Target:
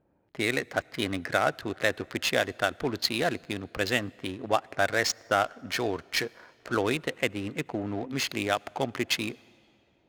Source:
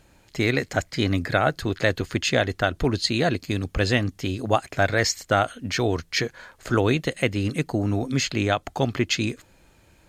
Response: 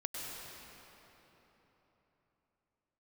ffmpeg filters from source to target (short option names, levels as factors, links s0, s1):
-filter_complex "[0:a]highpass=f=390:p=1,adynamicsmooth=sensitivity=5.5:basefreq=580,asplit=2[s0][s1];[1:a]atrim=start_sample=2205,asetrate=61740,aresample=44100[s2];[s1][s2]afir=irnorm=-1:irlink=0,volume=0.0708[s3];[s0][s3]amix=inputs=2:normalize=0,volume=0.708"